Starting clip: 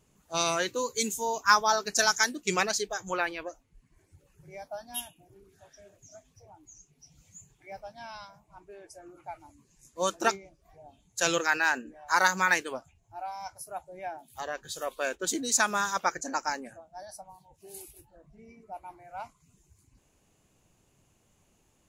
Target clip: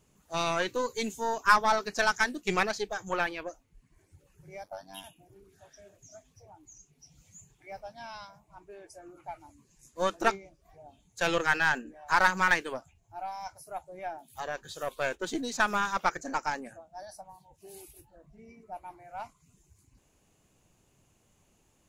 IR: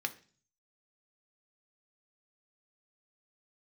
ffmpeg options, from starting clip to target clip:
-filter_complex "[0:a]acrossover=split=4000[link_01][link_02];[link_02]acompressor=threshold=-47dB:ratio=4:attack=1:release=60[link_03];[link_01][link_03]amix=inputs=2:normalize=0,asettb=1/sr,asplit=3[link_04][link_05][link_06];[link_04]atrim=end=4.634[link_07];[link_05]atrim=start=4.63:end=5.04,asetpts=PTS-STARTPTS,afade=type=in:duration=0.004:curve=qsin,afade=type=out:start_time=0.406:duration=0.004:curve=qsin,aeval=exprs='val(0)*sin(2*PI*48*n/s)':channel_layout=same[link_08];[link_06]atrim=start=5.036[link_09];[link_07][link_08]acrossfade=duration=0.004:curve1=hsin:curve2=qsin[link_10];[link_10][link_09]acrossfade=duration=0.004:curve1=qsin:curve2=hsin,aeval=exprs='0.376*(cos(1*acos(clip(val(0)/0.376,-1,1)))-cos(1*PI/2))+0.0237*(cos(8*acos(clip(val(0)/0.376,-1,1)))-cos(8*PI/2))':channel_layout=same"

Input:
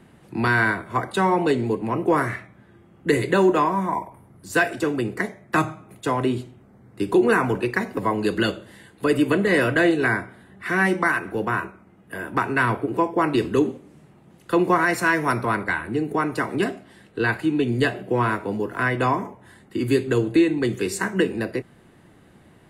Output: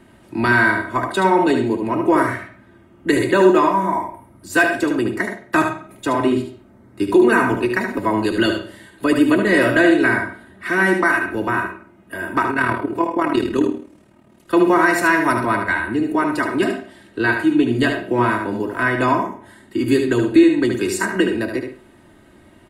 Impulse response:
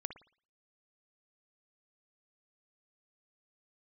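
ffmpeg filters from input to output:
-filter_complex "[0:a]aecho=1:1:3.2:0.54,asplit=2[link_01][link_02];[1:a]atrim=start_sample=2205,asetrate=52920,aresample=44100,adelay=74[link_03];[link_02][link_03]afir=irnorm=-1:irlink=0,volume=-2dB[link_04];[link_01][link_04]amix=inputs=2:normalize=0,asettb=1/sr,asplit=3[link_05][link_06][link_07];[link_05]atrim=end=12.514[link_08];[link_06]atrim=start=12.51:end=14.54,asetpts=PTS-STARTPTS,afade=type=in:duration=0.004:curve=qsin,afade=type=out:start_time=2.026:duration=0.004:curve=qsin,tremolo=f=38:d=0.621[link_09];[link_07]atrim=start=14.536[link_10];[link_08][link_09]acrossfade=duration=0.004:curve1=hsin:curve2=qsin[link_11];[link_11][link_10]acrossfade=duration=0.004:curve1=qsin:curve2=hsin,volume=2dB"

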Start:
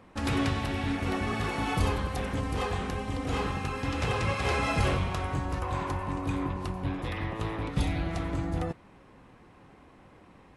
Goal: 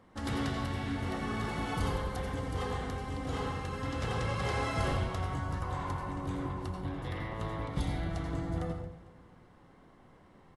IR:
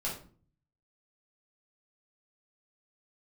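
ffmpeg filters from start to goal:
-filter_complex "[0:a]bandreject=frequency=2500:width=6.2,aecho=1:1:226|452|678|904:0.119|0.057|0.0274|0.0131,asplit=2[link_01][link_02];[1:a]atrim=start_sample=2205,adelay=82[link_03];[link_02][link_03]afir=irnorm=-1:irlink=0,volume=-8dB[link_04];[link_01][link_04]amix=inputs=2:normalize=0,volume=-6dB"

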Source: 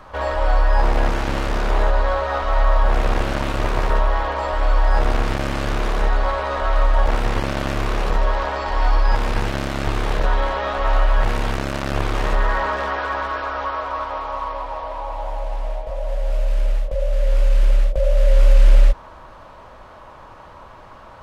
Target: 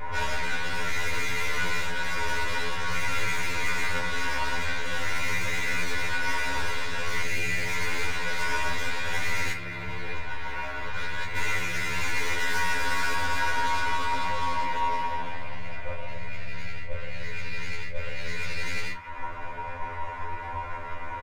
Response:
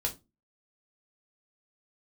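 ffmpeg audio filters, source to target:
-filter_complex "[0:a]asettb=1/sr,asplit=3[link_01][link_02][link_03];[link_01]atrim=end=7.224[link_04];[link_02]atrim=start=7.22:end=7.67,asetpts=PTS-STARTPTS,afade=type=in:duration=0.004:curve=qsin,afade=type=out:start_time=0.446:duration=0.004:curve=qsin,asuperstop=centerf=1100:order=4:qfactor=1.2[link_05];[link_03]atrim=start=7.666[link_06];[link_04][link_05]acrossfade=duration=0.004:curve1=hsin:curve2=qsin[link_07];[link_07][link_06]acrossfade=duration=0.004:curve1=qsin:curve2=hsin,asettb=1/sr,asplit=3[link_08][link_09][link_10];[link_08]atrim=end=9.524[link_11];[link_09]atrim=start=9.52:end=11.36,asetpts=PTS-STARTPTS,afade=type=in:duration=0.004:curve=qsin,afade=type=out:start_time=1.836:duration=0.004:curve=qsin,agate=range=-13dB:threshold=-13dB:ratio=16:detection=peak[link_12];[link_10]atrim=start=11.356[link_13];[link_11][link_12]acrossfade=duration=0.004:curve1=hsin:curve2=qsin[link_14];[link_14][link_13]acrossfade=duration=0.004:curve1=qsin:curve2=hsin,aecho=1:1:2.9:0.43,acrossover=split=1300[link_15][link_16];[link_15]acompressor=threshold=-25dB:ratio=12[link_17];[link_17][link_16]amix=inputs=2:normalize=0,lowpass=frequency=2200:width_type=q:width=6.2,asplit=2[link_18][link_19];[link_19]aeval=exprs='sgn(val(0))*max(abs(val(0))-0.0075,0)':channel_layout=same,volume=-6dB[link_20];[link_18][link_20]amix=inputs=2:normalize=0,aeval=exprs='(tanh(22.4*val(0)+0.2)-tanh(0.2))/22.4':channel_layout=same,flanger=delay=6.3:depth=1.5:regen=85:speed=0.1:shape=triangular[link_21];[1:a]atrim=start_sample=2205[link_22];[link_21][link_22]afir=irnorm=-1:irlink=0,afftfilt=real='re*2*eq(mod(b,4),0)':imag='im*2*eq(mod(b,4),0)':win_size=2048:overlap=0.75,volume=4dB"

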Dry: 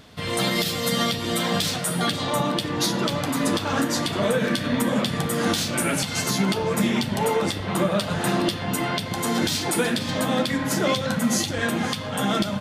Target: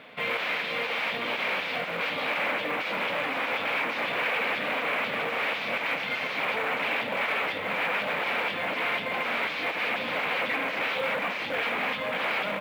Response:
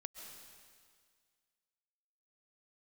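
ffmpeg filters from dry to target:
-af "aeval=exprs='0.0501*(abs(mod(val(0)/0.0501+3,4)-2)-1)':channel_layout=same,highpass=330,equalizer=frequency=360:width_type=q:width=4:gain=-8,equalizer=frequency=520:width_type=q:width=4:gain=4,equalizer=frequency=2300:width_type=q:width=4:gain=9,lowpass=frequency=3100:width=0.5412,lowpass=frequency=3100:width=1.3066,acrusher=bits=7:mode=log:mix=0:aa=0.000001,volume=2.5dB"

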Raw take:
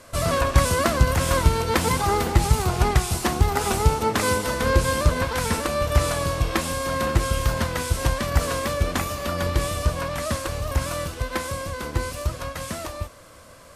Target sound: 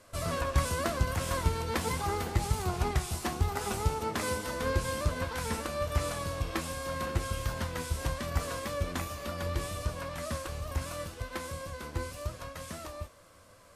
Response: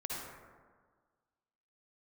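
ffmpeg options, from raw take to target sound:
-af "flanger=delay=9.5:depth=4.2:regen=62:speed=0.81:shape=triangular,volume=-6dB"

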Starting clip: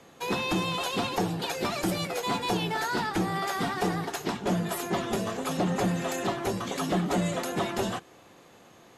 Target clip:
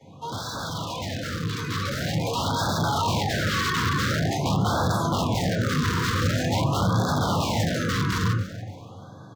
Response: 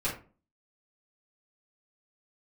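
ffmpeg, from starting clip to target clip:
-filter_complex "[1:a]atrim=start_sample=2205[link_01];[0:a][link_01]afir=irnorm=-1:irlink=0,aeval=exprs='(mod(7.5*val(0)+1,2)-1)/7.5':channel_layout=same,asetrate=42336,aresample=44100,asoftclip=type=tanh:threshold=-24dB,highpass=79,highshelf=frequency=9000:gain=-11.5,alimiter=limit=-23.5dB:level=0:latency=1,equalizer=frequency=100:width_type=o:width=0.67:gain=12,equalizer=frequency=400:width_type=o:width=0.67:gain=-8,equalizer=frequency=2500:width_type=o:width=0.67:gain=-9,equalizer=frequency=10000:width_type=o:width=0.67:gain=-9,aecho=1:1:287|574|861:0.2|0.0678|0.0231,dynaudnorm=framelen=310:gausssize=13:maxgain=7.5dB,afftfilt=real='re*(1-between(b*sr/1024,670*pow(2400/670,0.5+0.5*sin(2*PI*0.46*pts/sr))/1.41,670*pow(2400/670,0.5+0.5*sin(2*PI*0.46*pts/sr))*1.41))':imag='im*(1-between(b*sr/1024,670*pow(2400/670,0.5+0.5*sin(2*PI*0.46*pts/sr))/1.41,670*pow(2400/670,0.5+0.5*sin(2*PI*0.46*pts/sr))*1.41))':win_size=1024:overlap=0.75"

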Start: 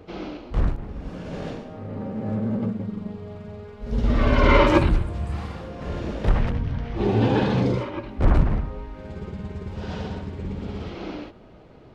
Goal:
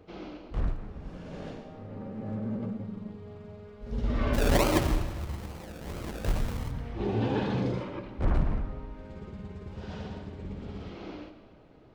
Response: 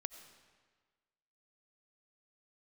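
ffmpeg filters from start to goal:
-filter_complex "[0:a]asplit=3[link_01][link_02][link_03];[link_01]afade=type=out:start_time=4.33:duration=0.02[link_04];[link_02]acrusher=samples=34:mix=1:aa=0.000001:lfo=1:lforange=20.4:lforate=2.3,afade=type=in:start_time=4.33:duration=0.02,afade=type=out:start_time=6.7:duration=0.02[link_05];[link_03]afade=type=in:start_time=6.7:duration=0.02[link_06];[link_04][link_05][link_06]amix=inputs=3:normalize=0[link_07];[1:a]atrim=start_sample=2205[link_08];[link_07][link_08]afir=irnorm=-1:irlink=0,volume=-5.5dB"

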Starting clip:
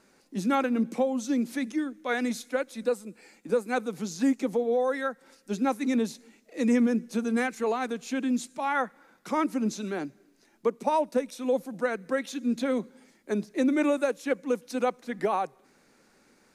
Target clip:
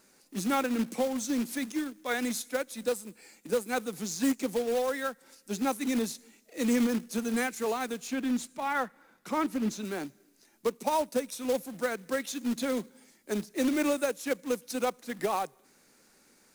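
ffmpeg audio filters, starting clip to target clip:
ffmpeg -i in.wav -filter_complex "[0:a]crystalizer=i=2:c=0,acrusher=bits=3:mode=log:mix=0:aa=0.000001,asettb=1/sr,asplit=3[link_01][link_02][link_03];[link_01]atrim=end=8.074[link_04];[link_02]atrim=start=8.07:end=9.85,asetpts=PTS-STARTPTS,afade=type=in:duration=0.004:curve=qsin,afade=type=out:start_time=1.776:duration=0.004:curve=qsin,bass=frequency=250:gain=2,treble=frequency=4000:gain=-7[link_05];[link_03]atrim=start=9.846[link_06];[link_04][link_05]acrossfade=duration=0.004:curve1=hsin:curve2=qsin[link_07];[link_07][link_06]acrossfade=duration=0.004:curve1=qsin:curve2=hsin,volume=-3.5dB" out.wav

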